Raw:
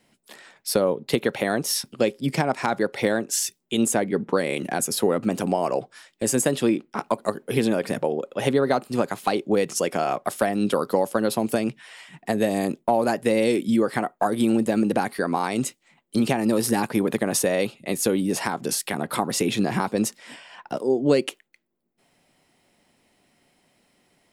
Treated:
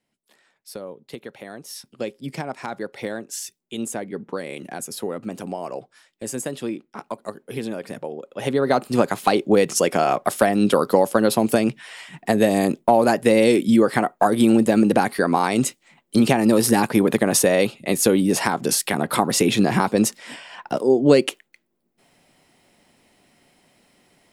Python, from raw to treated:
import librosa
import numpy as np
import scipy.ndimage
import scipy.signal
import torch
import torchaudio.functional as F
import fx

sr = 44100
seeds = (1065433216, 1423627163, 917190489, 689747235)

y = fx.gain(x, sr, db=fx.line((1.61, -14.0), (2.03, -7.0), (8.21, -7.0), (8.84, 5.0)))